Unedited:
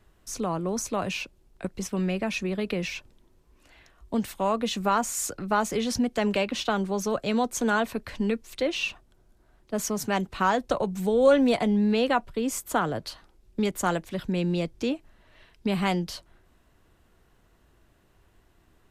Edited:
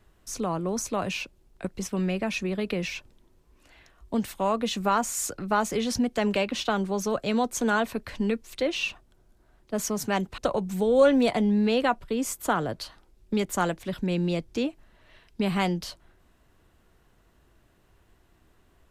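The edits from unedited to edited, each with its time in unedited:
0:10.38–0:10.64: remove

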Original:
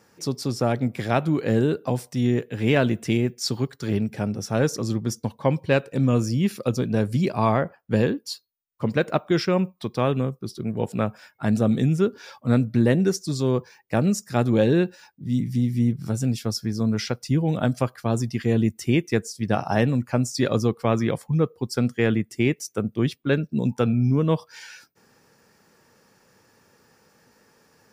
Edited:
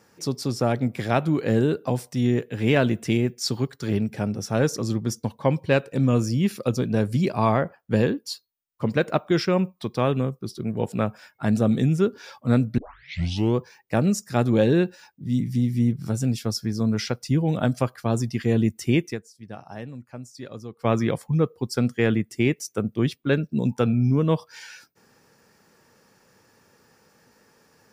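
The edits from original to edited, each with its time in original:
0:12.78: tape start 0.79 s
0:19.10–0:20.86: duck −16 dB, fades 0.39 s exponential

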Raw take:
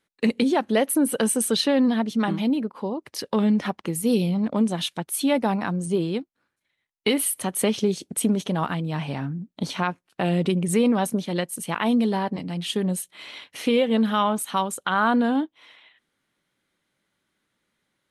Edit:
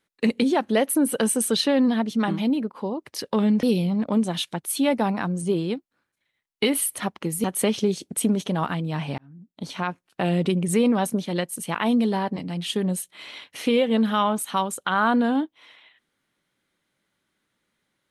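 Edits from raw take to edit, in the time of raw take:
0:03.63–0:04.07: move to 0:07.44
0:09.18–0:10.06: fade in

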